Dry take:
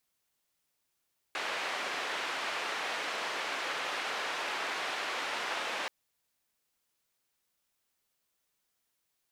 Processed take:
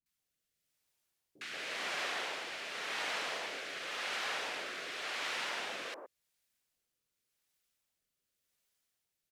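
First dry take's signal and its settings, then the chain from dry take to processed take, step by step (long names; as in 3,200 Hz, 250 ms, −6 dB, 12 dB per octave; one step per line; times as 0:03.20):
band-limited noise 480–2,400 Hz, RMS −35.5 dBFS 4.53 s
rotating-speaker cabinet horn 0.9 Hz
three-band delay without the direct sound lows, highs, mids 60/180 ms, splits 310/1,000 Hz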